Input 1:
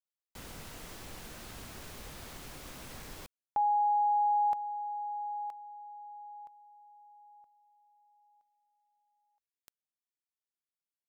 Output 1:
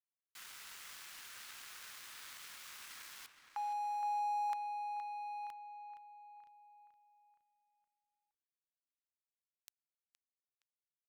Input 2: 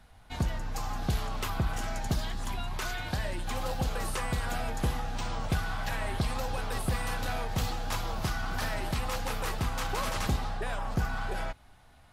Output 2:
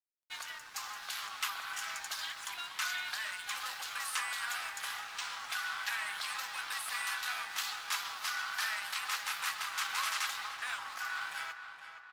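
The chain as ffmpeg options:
-filter_complex "[0:a]highpass=f=1200:w=0.5412,highpass=f=1200:w=1.3066,highshelf=f=9600:g=-3,acontrast=65,aeval=exprs='sgn(val(0))*max(abs(val(0))-0.00335,0)':c=same,asplit=2[s0][s1];[s1]adelay=468,lowpass=f=3300:p=1,volume=0.355,asplit=2[s2][s3];[s3]adelay=468,lowpass=f=3300:p=1,volume=0.53,asplit=2[s4][s5];[s5]adelay=468,lowpass=f=3300:p=1,volume=0.53,asplit=2[s6][s7];[s7]adelay=468,lowpass=f=3300:p=1,volume=0.53,asplit=2[s8][s9];[s9]adelay=468,lowpass=f=3300:p=1,volume=0.53,asplit=2[s10][s11];[s11]adelay=468,lowpass=f=3300:p=1,volume=0.53[s12];[s2][s4][s6][s8][s10][s12]amix=inputs=6:normalize=0[s13];[s0][s13]amix=inputs=2:normalize=0,volume=0.708"

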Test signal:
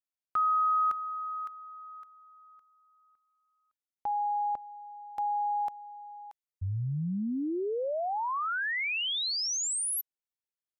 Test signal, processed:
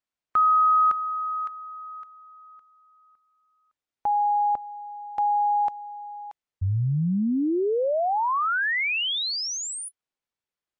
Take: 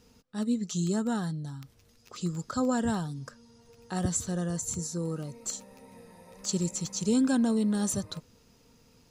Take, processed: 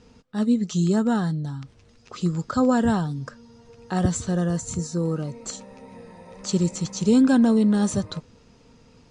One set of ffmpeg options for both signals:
-af "aemphasis=mode=reproduction:type=50fm,volume=2.51" -ar 22050 -c:a libmp3lame -b:a 56k

